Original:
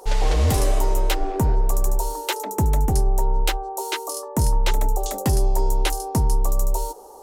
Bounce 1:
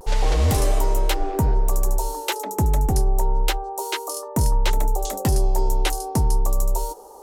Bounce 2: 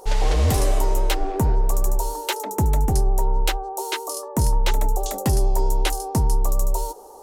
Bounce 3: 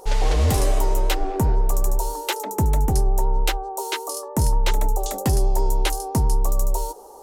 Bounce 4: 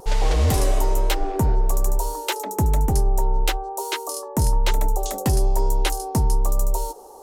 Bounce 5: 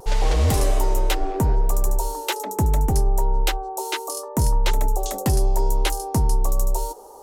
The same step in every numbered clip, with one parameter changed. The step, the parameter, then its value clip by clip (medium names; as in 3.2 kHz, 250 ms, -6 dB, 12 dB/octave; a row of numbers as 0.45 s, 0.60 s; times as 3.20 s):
vibrato, rate: 0.3 Hz, 11 Hz, 7.7 Hz, 1.1 Hz, 0.73 Hz